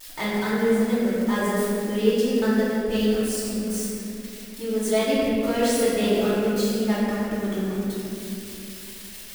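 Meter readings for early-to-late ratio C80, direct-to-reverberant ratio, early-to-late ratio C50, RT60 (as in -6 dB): -2.0 dB, -10.0 dB, -3.5 dB, 2.8 s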